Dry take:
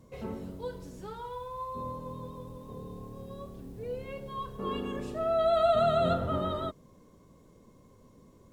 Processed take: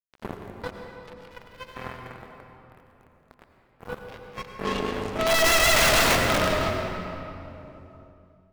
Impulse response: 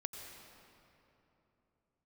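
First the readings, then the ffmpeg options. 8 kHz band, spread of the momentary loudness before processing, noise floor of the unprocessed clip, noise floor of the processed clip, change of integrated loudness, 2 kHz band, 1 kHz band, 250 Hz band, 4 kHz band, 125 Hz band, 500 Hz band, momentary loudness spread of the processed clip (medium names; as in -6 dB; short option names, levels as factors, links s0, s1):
no reading, 19 LU, -59 dBFS, -61 dBFS, +10.0 dB, +24.0 dB, +4.5 dB, +4.5 dB, +18.0 dB, +4.0 dB, +2.0 dB, 22 LU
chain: -filter_complex "[0:a]aeval=exprs='(mod(13.3*val(0)+1,2)-1)/13.3':c=same,acrusher=bits=4:mix=0:aa=0.5[s0];[1:a]atrim=start_sample=2205[s1];[s0][s1]afir=irnorm=-1:irlink=0,volume=2.66"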